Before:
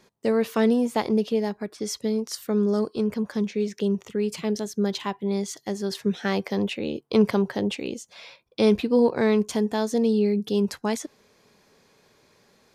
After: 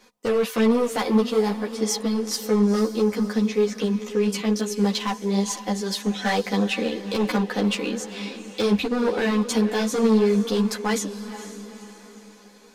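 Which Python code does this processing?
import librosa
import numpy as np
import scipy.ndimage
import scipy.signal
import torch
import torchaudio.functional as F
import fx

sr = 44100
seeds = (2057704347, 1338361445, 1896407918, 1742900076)

p1 = fx.peak_eq(x, sr, hz=110.0, db=-12.5, octaves=1.9)
p2 = p1 + 0.62 * np.pad(p1, (int(4.0 * sr / 1000.0), 0))[:len(p1)]
p3 = fx.over_compress(p2, sr, threshold_db=-21.0, ratio=-0.5)
p4 = p2 + (p3 * 10.0 ** (2.5 / 20.0))
p5 = np.clip(p4, -10.0 ** (-14.5 / 20.0), 10.0 ** (-14.5 / 20.0))
p6 = p5 + fx.echo_diffused(p5, sr, ms=476, feedback_pct=46, wet_db=-12.0, dry=0)
y = fx.ensemble(p6, sr)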